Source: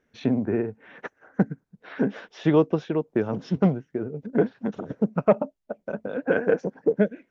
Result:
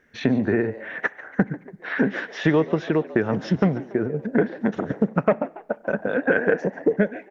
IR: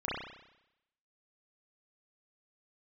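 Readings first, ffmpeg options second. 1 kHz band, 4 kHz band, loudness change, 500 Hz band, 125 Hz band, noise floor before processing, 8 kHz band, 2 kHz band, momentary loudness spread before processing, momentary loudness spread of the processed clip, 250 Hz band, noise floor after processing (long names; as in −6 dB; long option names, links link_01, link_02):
+3.0 dB, +6.0 dB, +2.0 dB, +1.5 dB, +2.0 dB, −73 dBFS, can't be measured, +9.5 dB, 12 LU, 7 LU, +2.0 dB, −50 dBFS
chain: -filter_complex "[0:a]equalizer=frequency=1800:width_type=o:width=0.56:gain=10,acompressor=threshold=-24dB:ratio=3,asplit=5[link_01][link_02][link_03][link_04][link_05];[link_02]adelay=142,afreqshift=100,volume=-18dB[link_06];[link_03]adelay=284,afreqshift=200,volume=-24.7dB[link_07];[link_04]adelay=426,afreqshift=300,volume=-31.5dB[link_08];[link_05]adelay=568,afreqshift=400,volume=-38.2dB[link_09];[link_01][link_06][link_07][link_08][link_09]amix=inputs=5:normalize=0,asplit=2[link_10][link_11];[1:a]atrim=start_sample=2205[link_12];[link_11][link_12]afir=irnorm=-1:irlink=0,volume=-28dB[link_13];[link_10][link_13]amix=inputs=2:normalize=0,volume=6.5dB"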